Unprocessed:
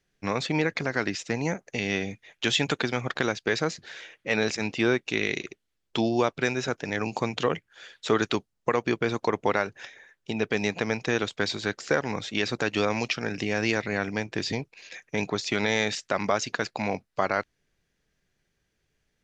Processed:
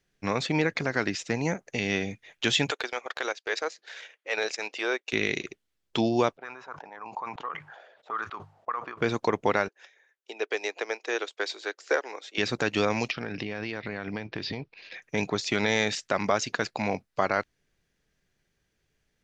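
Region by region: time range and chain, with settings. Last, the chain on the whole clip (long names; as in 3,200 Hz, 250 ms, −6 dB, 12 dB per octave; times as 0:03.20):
0:02.71–0:05.13: high-pass filter 430 Hz 24 dB per octave + transient designer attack −5 dB, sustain −9 dB
0:06.37–0:09.01: envelope filter 590–1,200 Hz, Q 5.4, up, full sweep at −22 dBFS + mains-hum notches 50/100/150 Hz + level that may fall only so fast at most 55 dB per second
0:09.68–0:12.38: Butterworth high-pass 350 Hz + expander for the loud parts, over −45 dBFS
0:13.11–0:15.02: Butterworth low-pass 4,900 Hz + downward compressor 10 to 1, threshold −28 dBFS
whole clip: no processing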